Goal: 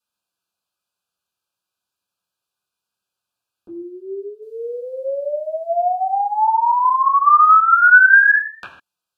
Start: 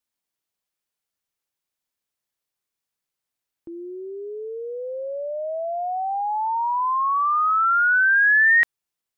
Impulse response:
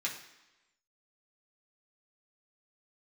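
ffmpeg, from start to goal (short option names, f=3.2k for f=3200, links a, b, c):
-filter_complex "[0:a]asuperstop=centerf=2000:order=12:qfactor=2.7,asettb=1/sr,asplit=3[a][b][c];[a]atrim=end=4.424[d];[b]atrim=start=4.42:end=6.6,asetpts=PTS-STARTPTS,afade=t=in:d=0.004:c=qsin,afade=t=out:st=2.176:d=0.004:c=qsin,highshelf=f=2.4k:g=11[e];[c]atrim=start=6.596[f];[d][e]acrossfade=d=0.004:c1=hsin:c2=qsin[g];[g][f]acrossfade=d=0.004:c1=qsin:c2=hsin[h];[1:a]atrim=start_sample=2205,atrim=end_sample=4410,asetrate=26901,aresample=44100[i];[h][i]afir=irnorm=-1:irlink=0,volume=-1dB"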